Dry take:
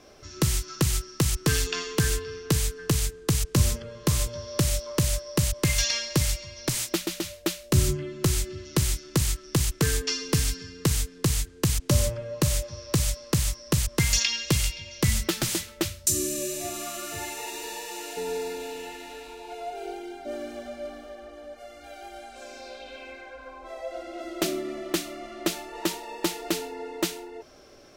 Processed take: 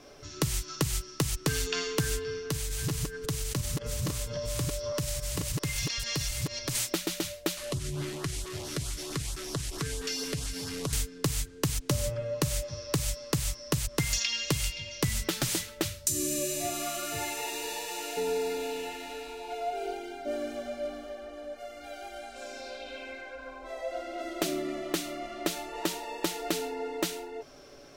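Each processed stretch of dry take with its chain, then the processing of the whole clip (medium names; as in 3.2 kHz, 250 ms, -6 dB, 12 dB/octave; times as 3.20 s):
2.42–6.75 s: chunks repeated in reverse 278 ms, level -1 dB + compression 3:1, threshold -31 dBFS
7.57–10.93 s: one-bit delta coder 64 kbps, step -31 dBFS + LFO notch saw up 4.5 Hz 500–2600 Hz + compression 16:1, threshold -29 dBFS
whole clip: comb 7.1 ms, depth 39%; compression, threshold -25 dBFS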